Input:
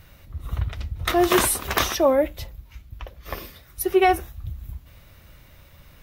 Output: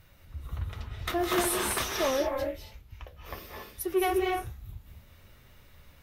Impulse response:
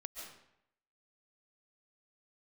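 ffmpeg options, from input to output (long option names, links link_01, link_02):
-filter_complex "[0:a]asoftclip=type=tanh:threshold=-12.5dB,flanger=delay=7.9:depth=6.5:regen=63:speed=1.1:shape=sinusoidal[link_01];[1:a]atrim=start_sample=2205,afade=type=out:start_time=0.25:duration=0.01,atrim=end_sample=11466,asetrate=29547,aresample=44100[link_02];[link_01][link_02]afir=irnorm=-1:irlink=0"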